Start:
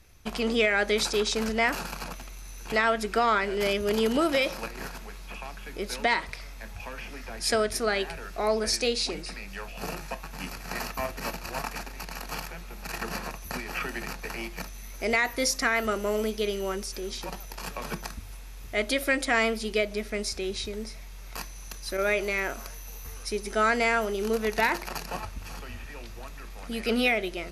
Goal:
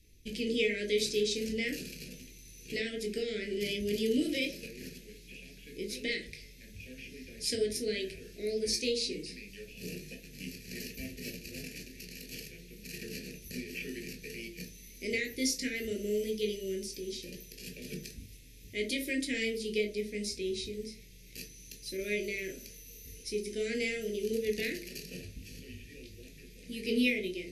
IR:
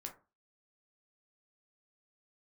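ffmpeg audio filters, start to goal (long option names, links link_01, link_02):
-filter_complex "[0:a]aeval=exprs='0.299*(cos(1*acos(clip(val(0)/0.299,-1,1)))-cos(1*PI/2))+0.0168*(cos(3*acos(clip(val(0)/0.299,-1,1)))-cos(3*PI/2))':channel_layout=same,asuperstop=centerf=1000:order=8:qfactor=0.6[link_01];[1:a]atrim=start_sample=2205,asetrate=36603,aresample=44100[link_02];[link_01][link_02]afir=irnorm=-1:irlink=0"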